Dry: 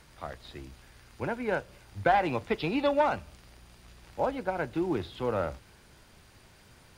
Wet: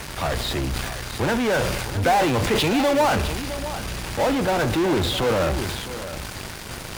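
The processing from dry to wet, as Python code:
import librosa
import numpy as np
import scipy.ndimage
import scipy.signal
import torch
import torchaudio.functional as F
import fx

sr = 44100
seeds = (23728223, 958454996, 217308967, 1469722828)

p1 = fx.fuzz(x, sr, gain_db=50.0, gate_db=-57.0)
p2 = x + F.gain(torch.from_numpy(p1), -10.0).numpy()
p3 = p2 + 10.0 ** (-13.0 / 20.0) * np.pad(p2, (int(660 * sr / 1000.0), 0))[:len(p2)]
y = fx.sustainer(p3, sr, db_per_s=30.0)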